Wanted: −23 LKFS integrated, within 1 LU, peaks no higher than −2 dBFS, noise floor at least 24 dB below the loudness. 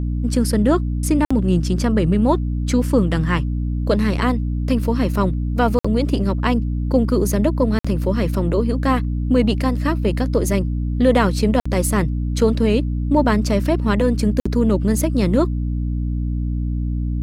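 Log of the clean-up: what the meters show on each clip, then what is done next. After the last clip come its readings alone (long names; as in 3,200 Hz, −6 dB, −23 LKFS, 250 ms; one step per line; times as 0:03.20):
number of dropouts 5; longest dropout 55 ms; mains hum 60 Hz; hum harmonics up to 300 Hz; level of the hum −19 dBFS; integrated loudness −19.5 LKFS; sample peak −3.0 dBFS; target loudness −23.0 LKFS
→ repair the gap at 0:01.25/0:05.79/0:07.79/0:11.60/0:14.40, 55 ms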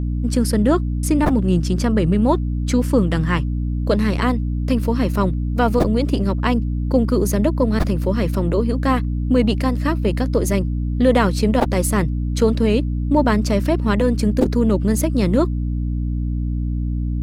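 number of dropouts 0; mains hum 60 Hz; hum harmonics up to 300 Hz; level of the hum −19 dBFS
→ mains-hum notches 60/120/180/240/300 Hz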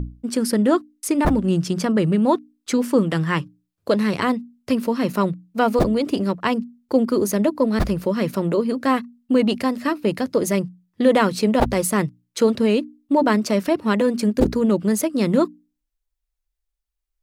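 mains hum none found; integrated loudness −21.0 LKFS; sample peak −3.0 dBFS; target loudness −23.0 LKFS
→ level −2 dB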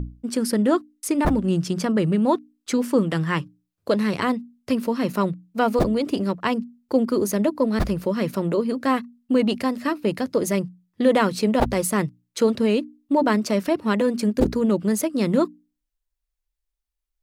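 integrated loudness −23.0 LKFS; sample peak −5.0 dBFS; background noise floor −81 dBFS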